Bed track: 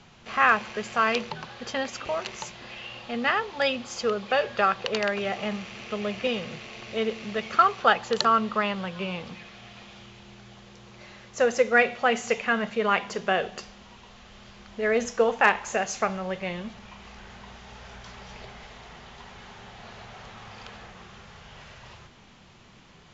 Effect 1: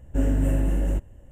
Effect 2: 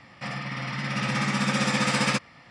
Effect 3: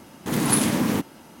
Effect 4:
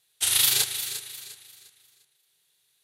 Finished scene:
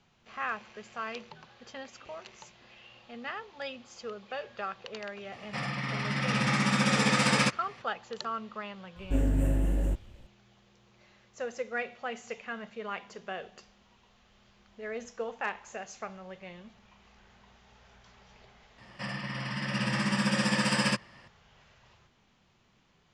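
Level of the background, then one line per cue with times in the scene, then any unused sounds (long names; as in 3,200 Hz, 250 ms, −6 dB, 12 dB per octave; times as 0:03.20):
bed track −14 dB
0:05.32: mix in 2 −1 dB
0:08.96: mix in 1 −4.5 dB
0:18.78: mix in 2 −4.5 dB + EQ curve with evenly spaced ripples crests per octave 1.3, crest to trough 8 dB
not used: 3, 4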